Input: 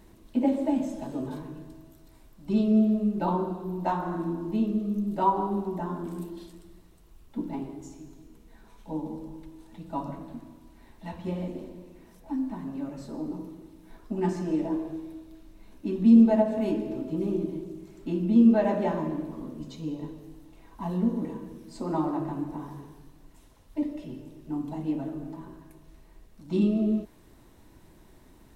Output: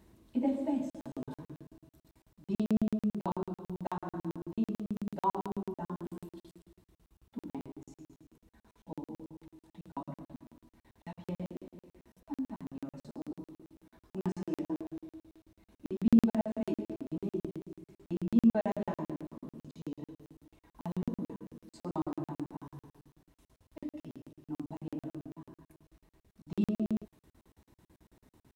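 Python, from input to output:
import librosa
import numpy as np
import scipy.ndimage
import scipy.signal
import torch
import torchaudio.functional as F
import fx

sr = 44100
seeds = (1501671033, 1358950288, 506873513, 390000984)

y = scipy.signal.sosfilt(scipy.signal.butter(4, 49.0, 'highpass', fs=sr, output='sos'), x)
y = fx.low_shelf(y, sr, hz=190.0, db=4.0)
y = fx.buffer_crackle(y, sr, first_s=0.9, period_s=0.11, block=2048, kind='zero')
y = y * 10.0 ** (-7.5 / 20.0)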